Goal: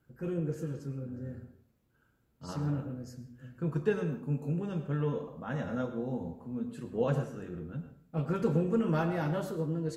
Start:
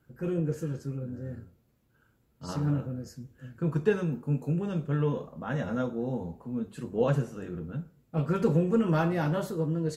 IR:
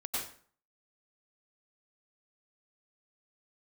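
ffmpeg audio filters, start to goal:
-filter_complex "[0:a]asplit=2[a][b];[1:a]atrim=start_sample=2205,highshelf=f=5k:g=-8.5[c];[b][c]afir=irnorm=-1:irlink=0,volume=-10dB[d];[a][d]amix=inputs=2:normalize=0,volume=-5.5dB"

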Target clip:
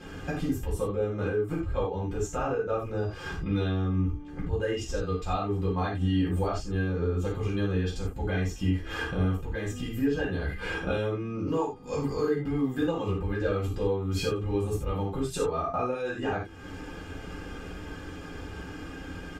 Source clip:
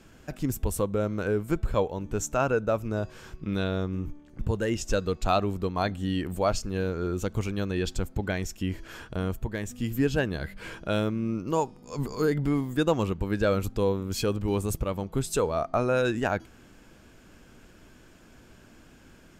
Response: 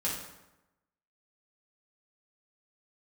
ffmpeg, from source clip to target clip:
-filter_complex "[0:a]lowpass=f=2.9k:p=1,aecho=1:1:2.5:0.56,acompressor=threshold=-41dB:ratio=5[a];[1:a]atrim=start_sample=2205,afade=t=out:st=0.15:d=0.01,atrim=end_sample=7056[b];[a][b]afir=irnorm=-1:irlink=0,volume=8.5dB"

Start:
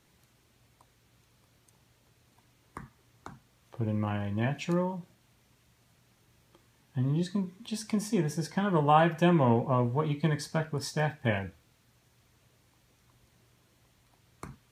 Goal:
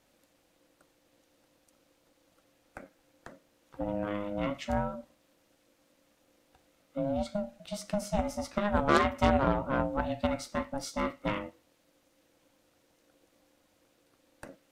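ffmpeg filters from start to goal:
-af "aeval=exprs='0.335*(cos(1*acos(clip(val(0)/0.335,-1,1)))-cos(1*PI/2))+0.0841*(cos(6*acos(clip(val(0)/0.335,-1,1)))-cos(6*PI/2))+0.0531*(cos(8*acos(clip(val(0)/0.335,-1,1)))-cos(8*PI/2))':c=same,aeval=exprs='val(0)*sin(2*PI*410*n/s)':c=same"

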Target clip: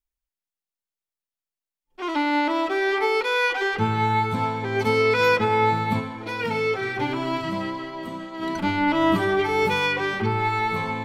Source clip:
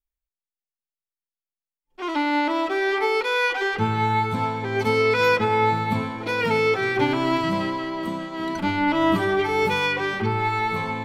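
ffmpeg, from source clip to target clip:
-filter_complex "[0:a]asplit=3[a][b][c];[a]afade=t=out:st=5.99:d=0.02[d];[b]flanger=delay=7.3:depth=1.9:regen=-48:speed=1.5:shape=sinusoidal,afade=t=in:st=5.99:d=0.02,afade=t=out:st=8.41:d=0.02[e];[c]afade=t=in:st=8.41:d=0.02[f];[d][e][f]amix=inputs=3:normalize=0"

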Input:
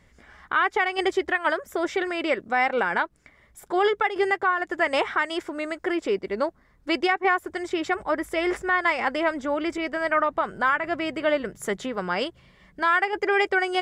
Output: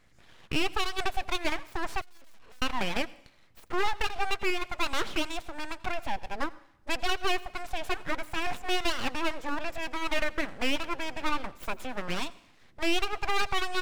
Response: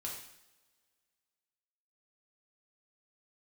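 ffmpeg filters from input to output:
-filter_complex "[0:a]aeval=exprs='abs(val(0))':c=same,asplit=2[a][b];[1:a]atrim=start_sample=2205,adelay=84[c];[b][c]afir=irnorm=-1:irlink=0,volume=-19dB[d];[a][d]amix=inputs=2:normalize=0,asettb=1/sr,asplit=3[e][f][g];[e]atrim=end=2.014[h];[f]atrim=start=2.01:end=2.62,asetpts=PTS-STARTPTS,afade=t=in:d=0.004:c=qsin,afade=t=out:st=0.606:d=0.004:c=qsin,aeval=exprs='(tanh(79.4*val(0)+0.4)-tanh(0.4))/79.4':c=same[i];[g]atrim=start=2.616[j];[h][i]acrossfade=d=0.004:c1=hsin:c2=qsin[k];[k][j]acrossfade=d=0.004:c1=qsin:c2=hsin,volume=-3.5dB"

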